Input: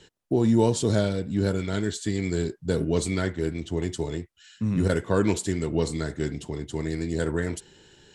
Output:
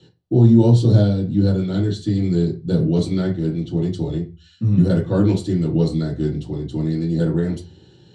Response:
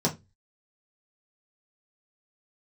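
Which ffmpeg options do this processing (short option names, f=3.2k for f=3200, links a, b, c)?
-filter_complex "[1:a]atrim=start_sample=2205,asetrate=33075,aresample=44100[a];[0:a][a]afir=irnorm=-1:irlink=0,volume=-12.5dB"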